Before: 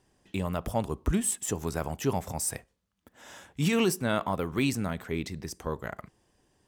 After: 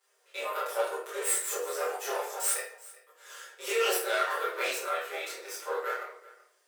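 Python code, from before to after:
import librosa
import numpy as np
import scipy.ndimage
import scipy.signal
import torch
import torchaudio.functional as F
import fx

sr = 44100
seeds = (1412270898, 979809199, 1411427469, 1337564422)

p1 = fx.lower_of_two(x, sr, delay_ms=6.6)
p2 = fx.high_shelf(p1, sr, hz=4500.0, db=10.5)
p3 = fx.level_steps(p2, sr, step_db=12)
p4 = p2 + (p3 * librosa.db_to_amplitude(-1.5))
p5 = fx.chorus_voices(p4, sr, voices=2, hz=0.65, base_ms=26, depth_ms=1.8, mix_pct=55)
p6 = fx.quant_dither(p5, sr, seeds[0], bits=12, dither='none')
p7 = scipy.signal.sosfilt(scipy.signal.cheby1(6, 9, 360.0, 'highpass', fs=sr, output='sos'), p6)
p8 = p7 + fx.echo_single(p7, sr, ms=380, db=-20.5, dry=0)
y = fx.room_shoebox(p8, sr, seeds[1], volume_m3=76.0, walls='mixed', distance_m=1.2)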